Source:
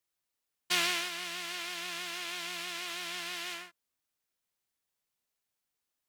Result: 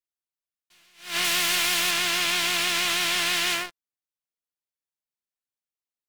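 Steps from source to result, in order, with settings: 1.24–1.91 s: treble shelf 9.9 kHz +9.5 dB; waveshaping leveller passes 5; attacks held to a fixed rise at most 150 dB/s; trim -2 dB

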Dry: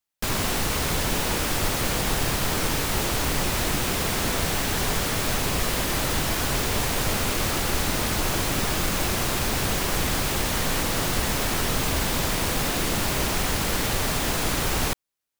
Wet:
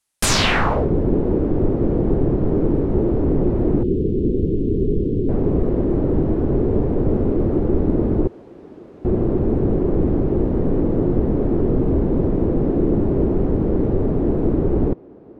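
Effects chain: 8.27–9.05 s: differentiator; on a send: thinning echo 825 ms, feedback 73%, high-pass 260 Hz, level -22.5 dB; on the sum: low-pass sweep 10 kHz -> 370 Hz, 0.23–0.88 s; 3.83–5.29 s: elliptic band-stop 430–3000 Hz, stop band 60 dB; trim +7.5 dB

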